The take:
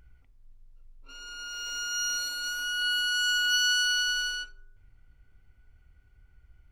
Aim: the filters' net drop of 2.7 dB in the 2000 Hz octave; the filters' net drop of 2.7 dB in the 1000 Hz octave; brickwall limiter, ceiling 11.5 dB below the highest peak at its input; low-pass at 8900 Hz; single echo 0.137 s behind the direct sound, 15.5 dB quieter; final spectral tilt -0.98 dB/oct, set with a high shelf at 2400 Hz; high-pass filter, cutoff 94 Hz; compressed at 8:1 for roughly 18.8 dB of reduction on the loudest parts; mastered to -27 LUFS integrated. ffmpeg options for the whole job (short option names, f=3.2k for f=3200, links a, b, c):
-af "highpass=94,lowpass=8.9k,equalizer=f=1k:t=o:g=-5,equalizer=f=2k:t=o:g=-5,highshelf=f=2.4k:g=8.5,acompressor=threshold=-40dB:ratio=8,alimiter=level_in=20dB:limit=-24dB:level=0:latency=1,volume=-20dB,aecho=1:1:137:0.168,volume=21dB"